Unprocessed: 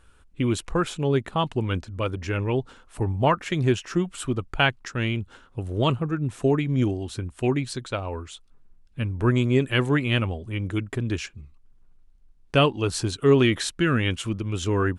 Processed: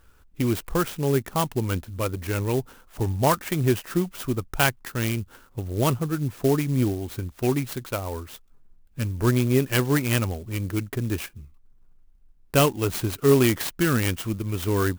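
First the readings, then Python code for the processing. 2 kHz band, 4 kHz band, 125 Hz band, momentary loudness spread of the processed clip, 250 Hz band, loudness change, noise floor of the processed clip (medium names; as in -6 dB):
-1.5 dB, -2.5 dB, 0.0 dB, 10 LU, 0.0 dB, 0.0 dB, -56 dBFS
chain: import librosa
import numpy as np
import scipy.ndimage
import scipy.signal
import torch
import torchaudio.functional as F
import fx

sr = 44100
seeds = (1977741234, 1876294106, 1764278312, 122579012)

y = fx.clock_jitter(x, sr, seeds[0], jitter_ms=0.055)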